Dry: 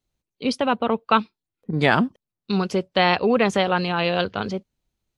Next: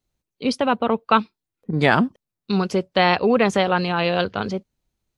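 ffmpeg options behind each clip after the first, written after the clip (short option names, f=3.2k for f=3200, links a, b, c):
-af "equalizer=f=3.1k:t=o:w=0.77:g=-2,volume=1.5dB"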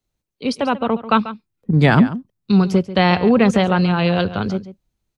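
-filter_complex "[0:a]acrossover=split=230|4100[a][b][c];[a]dynaudnorm=f=300:g=7:m=10.5dB[d];[d][b][c]amix=inputs=3:normalize=0,asplit=2[e][f];[f]adelay=139.9,volume=-14dB,highshelf=f=4k:g=-3.15[g];[e][g]amix=inputs=2:normalize=0"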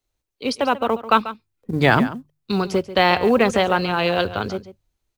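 -af "equalizer=f=180:w=1.5:g=-11.5,bandreject=f=50:t=h:w=6,bandreject=f=100:t=h:w=6,bandreject=f=150:t=h:w=6,acrusher=bits=9:mode=log:mix=0:aa=0.000001,volume=1dB"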